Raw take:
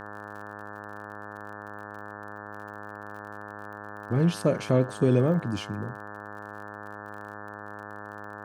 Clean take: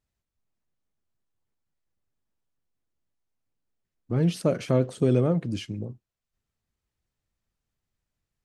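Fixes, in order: de-click; de-hum 103.7 Hz, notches 17

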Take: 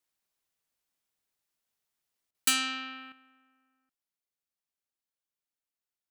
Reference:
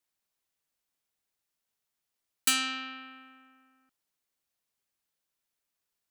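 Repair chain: interpolate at 2.31 s, 34 ms; gain correction +9.5 dB, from 3.12 s

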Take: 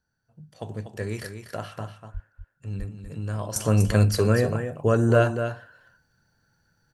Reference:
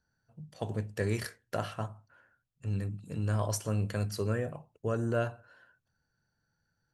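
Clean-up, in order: de-plosive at 2.13/2.78/3.86 s; inverse comb 243 ms -8.5 dB; trim 0 dB, from 3.56 s -11 dB

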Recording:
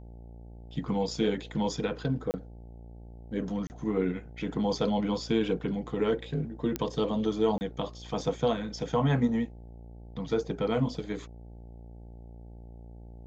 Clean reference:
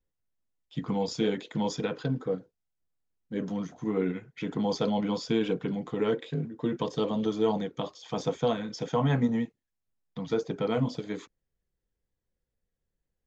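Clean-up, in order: de-click; de-hum 58 Hz, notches 15; interpolate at 2.31/3.67/7.58 s, 29 ms

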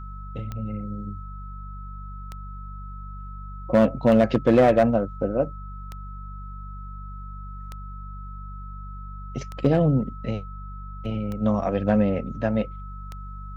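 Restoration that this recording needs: clip repair -10.5 dBFS; de-click; de-hum 48.6 Hz, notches 4; band-stop 1.3 kHz, Q 30

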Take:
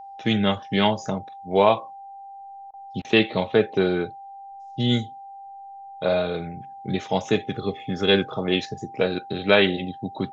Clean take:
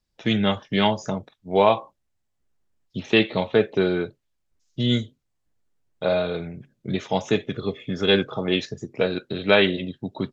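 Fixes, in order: band-stop 790 Hz, Q 30; interpolate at 2.71/3.02 s, 25 ms

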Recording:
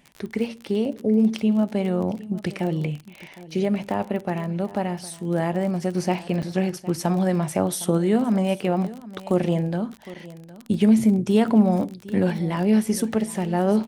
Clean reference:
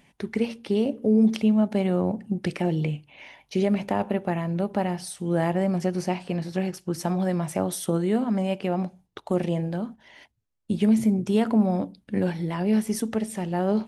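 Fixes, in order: de-click; interpolate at 6.42/10.14 s, 7.1 ms; inverse comb 760 ms -18 dB; gain correction -3.5 dB, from 5.95 s

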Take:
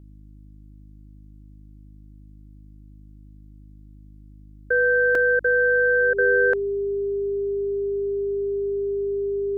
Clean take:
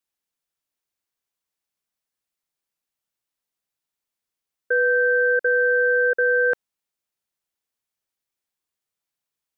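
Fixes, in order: de-hum 51.4 Hz, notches 6; band-stop 400 Hz, Q 30; interpolate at 5.15 s, 2.7 ms

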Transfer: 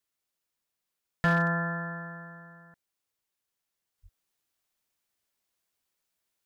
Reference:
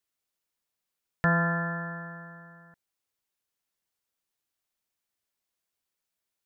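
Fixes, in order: clip repair -18 dBFS; 3.98 s: gain correction -3.5 dB; 4.02–4.14 s: high-pass 140 Hz 24 dB/octave

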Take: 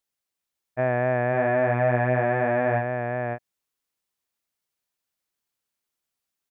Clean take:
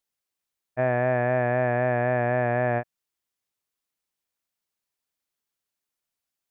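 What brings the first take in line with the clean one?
inverse comb 551 ms -4 dB

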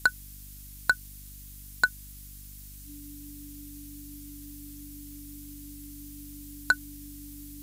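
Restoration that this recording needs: clip repair -12 dBFS; de-hum 49.3 Hz, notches 6; band-stop 290 Hz, Q 30; noise print and reduce 30 dB

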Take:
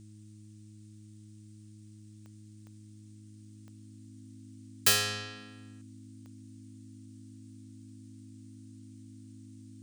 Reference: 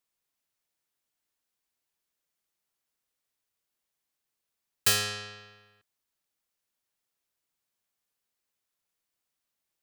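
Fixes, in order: de-click; de-hum 105.6 Hz, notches 3; band-stop 260 Hz, Q 30; noise reduction 30 dB, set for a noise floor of -52 dBFS

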